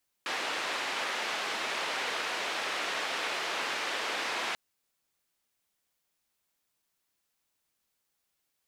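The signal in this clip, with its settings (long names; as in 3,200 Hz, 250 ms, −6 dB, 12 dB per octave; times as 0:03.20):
band-limited noise 420–2,800 Hz, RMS −33.5 dBFS 4.29 s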